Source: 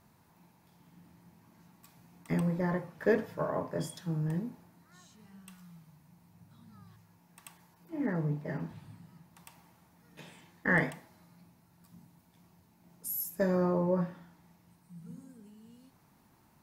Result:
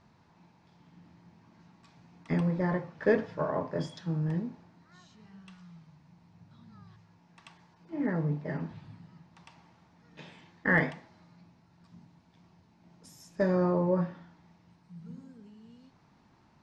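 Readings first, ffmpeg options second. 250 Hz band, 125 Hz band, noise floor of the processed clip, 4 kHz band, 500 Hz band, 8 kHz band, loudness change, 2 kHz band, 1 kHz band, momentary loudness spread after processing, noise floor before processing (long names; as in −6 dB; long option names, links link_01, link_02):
+2.0 dB, +2.0 dB, −64 dBFS, +1.5 dB, +2.0 dB, below −10 dB, +2.0 dB, +2.0 dB, +2.0 dB, 20 LU, −65 dBFS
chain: -af "lowpass=frequency=5600:width=0.5412,lowpass=frequency=5600:width=1.3066,volume=2dB"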